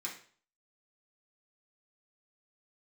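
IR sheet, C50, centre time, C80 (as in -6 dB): 7.5 dB, 23 ms, 12.0 dB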